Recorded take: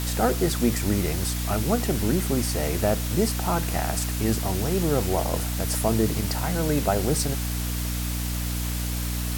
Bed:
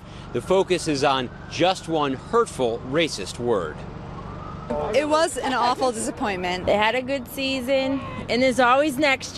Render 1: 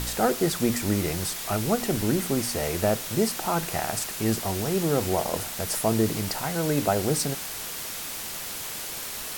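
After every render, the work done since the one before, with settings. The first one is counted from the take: de-hum 60 Hz, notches 5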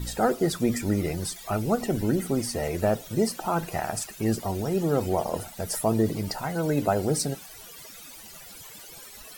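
noise reduction 16 dB, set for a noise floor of -35 dBFS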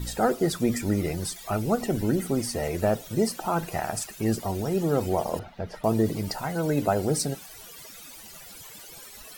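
5.39–5.84 s: distance through air 290 m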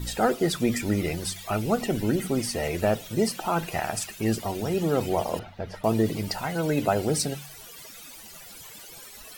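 de-hum 47.49 Hz, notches 4; dynamic bell 2.8 kHz, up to +7 dB, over -50 dBFS, Q 1.2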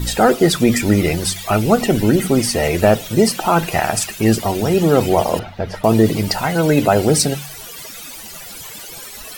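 trim +11 dB; peak limiter -2 dBFS, peak gain reduction 2.5 dB

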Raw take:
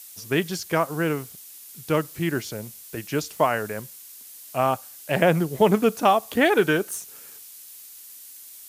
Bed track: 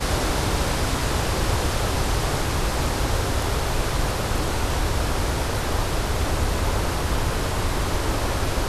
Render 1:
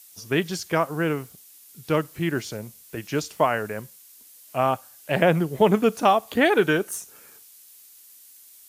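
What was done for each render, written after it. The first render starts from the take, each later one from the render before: noise print and reduce 6 dB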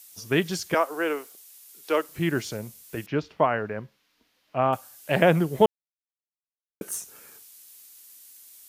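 0.74–2.09 s: high-pass 340 Hz 24 dB/octave; 3.06–4.73 s: distance through air 300 m; 5.66–6.81 s: mute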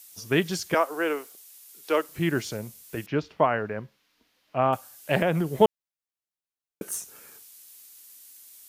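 5.18–5.61 s: compression 2.5:1, threshold -22 dBFS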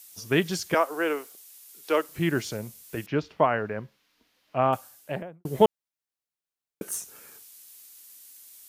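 4.77–5.45 s: studio fade out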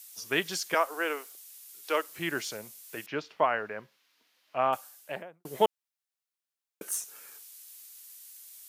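high-pass 840 Hz 6 dB/octave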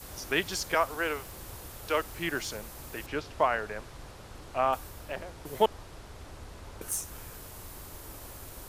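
add bed track -23 dB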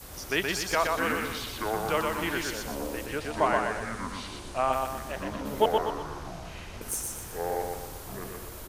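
ever faster or slower copies 517 ms, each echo -7 st, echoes 2, each echo -6 dB; feedback delay 122 ms, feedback 44%, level -3.5 dB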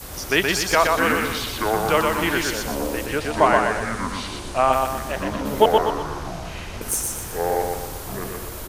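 trim +8.5 dB; peak limiter -2 dBFS, peak gain reduction 1 dB

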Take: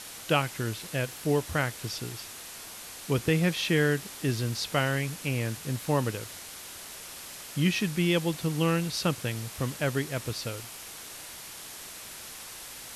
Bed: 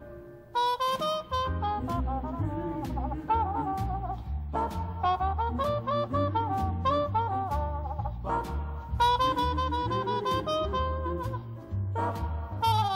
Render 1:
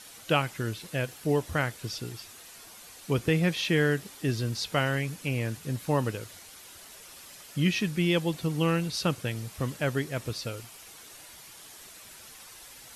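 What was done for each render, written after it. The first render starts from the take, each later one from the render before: noise reduction 8 dB, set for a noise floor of -44 dBFS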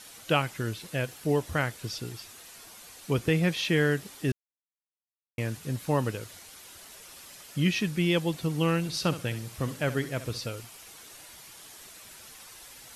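4.32–5.38 s: mute; 8.79–10.46 s: flutter echo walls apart 11.6 m, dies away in 0.3 s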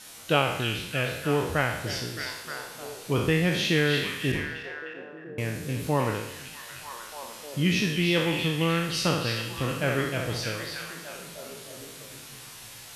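spectral sustain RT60 0.82 s; repeats whose band climbs or falls 308 ms, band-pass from 3.5 kHz, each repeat -0.7 oct, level -2 dB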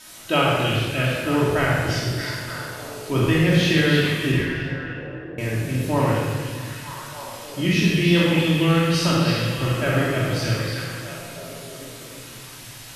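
simulated room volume 1600 m³, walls mixed, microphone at 2.8 m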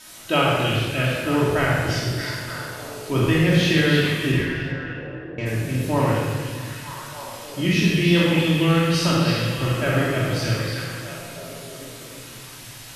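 4.72–5.45 s: low-pass 9.6 kHz -> 5.4 kHz 24 dB/octave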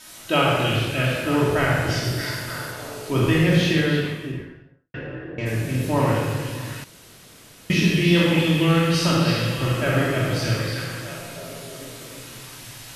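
2.04–2.72 s: treble shelf 12 kHz +8.5 dB; 3.41–4.94 s: studio fade out; 6.84–7.70 s: room tone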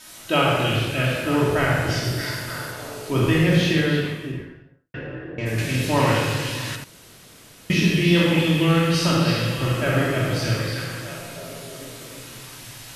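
5.58–6.76 s: peaking EQ 3.8 kHz +9.5 dB 2.6 oct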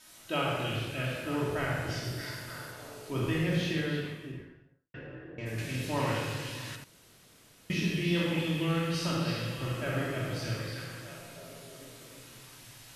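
trim -11.5 dB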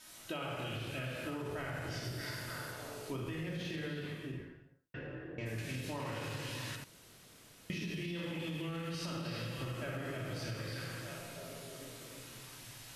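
peak limiter -24.5 dBFS, peak gain reduction 7 dB; compression, threshold -37 dBFS, peak gain reduction 8 dB

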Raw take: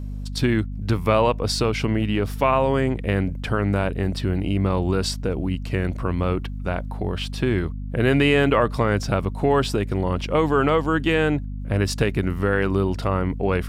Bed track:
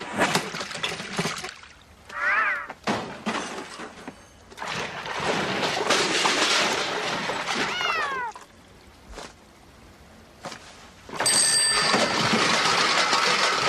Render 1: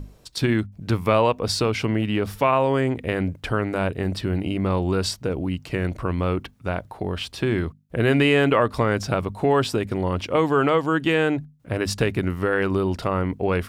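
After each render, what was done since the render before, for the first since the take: hum notches 50/100/150/200/250 Hz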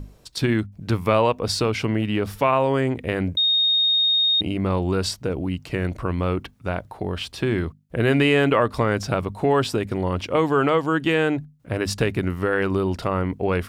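3.37–4.41 s: bleep 3.71 kHz -16 dBFS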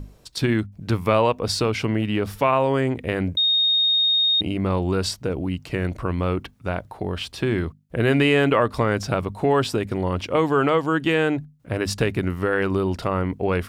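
no audible change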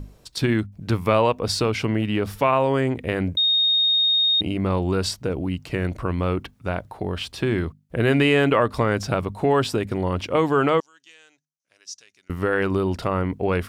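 10.80–12.30 s: band-pass filter 6 kHz, Q 7.1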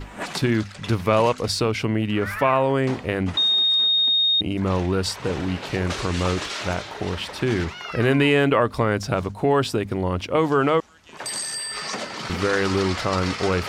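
add bed track -9 dB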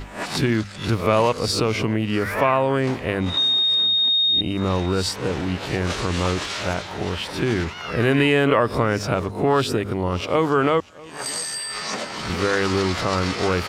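reverse spectral sustain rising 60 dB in 0.34 s; delay 641 ms -22.5 dB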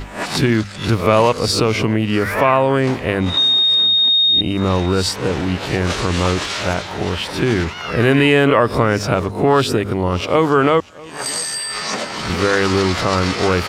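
trim +5 dB; peak limiter -2 dBFS, peak gain reduction 2 dB

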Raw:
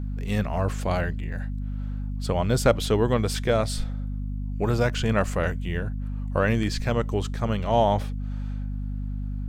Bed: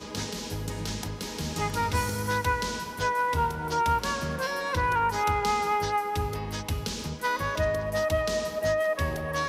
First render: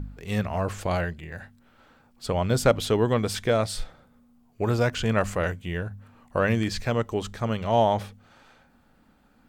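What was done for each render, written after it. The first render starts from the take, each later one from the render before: de-hum 50 Hz, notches 5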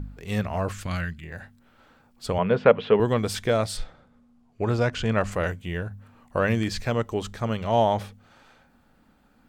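0.72–1.24 s: high-order bell 580 Hz -12.5 dB; 2.38–3.00 s: cabinet simulation 170–2900 Hz, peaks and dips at 190 Hz +8 dB, 310 Hz -8 dB, 460 Hz +9 dB, 1 kHz +5 dB, 1.7 kHz +4 dB, 2.7 kHz +5 dB; 3.77–5.32 s: distance through air 53 m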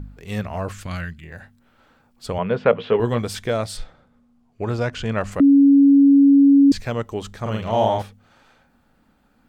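2.71–3.22 s: doubling 17 ms -7 dB; 5.40–6.72 s: bleep 279 Hz -8.5 dBFS; 7.41–8.02 s: doubling 46 ms -2 dB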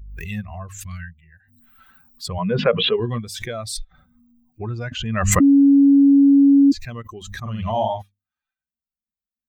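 expander on every frequency bin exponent 2; swell ahead of each attack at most 37 dB/s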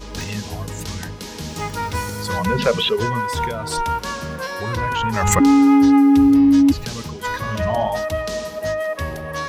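add bed +2.5 dB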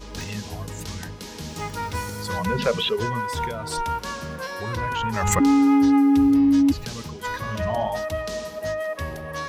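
trim -4.5 dB

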